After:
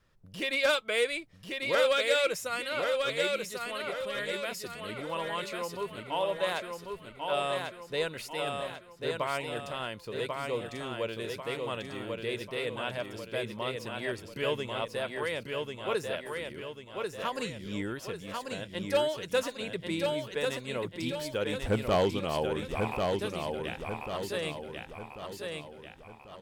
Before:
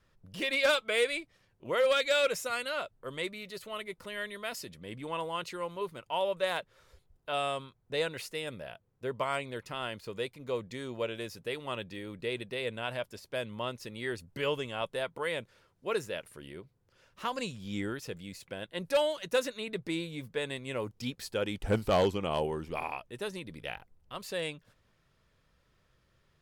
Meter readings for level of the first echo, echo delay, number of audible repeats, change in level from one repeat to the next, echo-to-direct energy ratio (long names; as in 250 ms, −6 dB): −4.0 dB, 1,092 ms, 5, −6.5 dB, −3.0 dB